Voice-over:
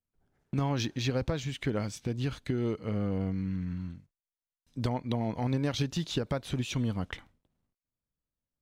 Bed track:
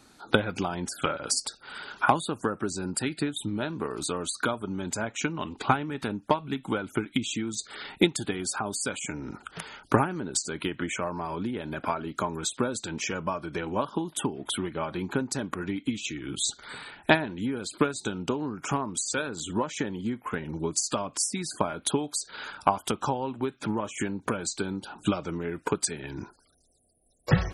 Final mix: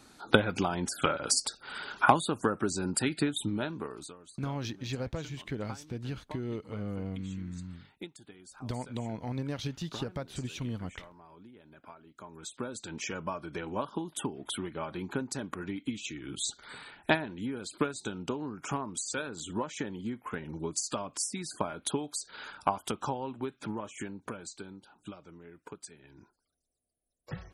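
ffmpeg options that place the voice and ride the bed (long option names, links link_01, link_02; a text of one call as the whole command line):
ffmpeg -i stem1.wav -i stem2.wav -filter_complex "[0:a]adelay=3850,volume=-5.5dB[link_01];[1:a]volume=16dB,afade=type=out:start_time=3.41:duration=0.75:silence=0.0841395,afade=type=in:start_time=12.17:duration=0.88:silence=0.158489,afade=type=out:start_time=23.31:duration=1.68:silence=0.223872[link_02];[link_01][link_02]amix=inputs=2:normalize=0" out.wav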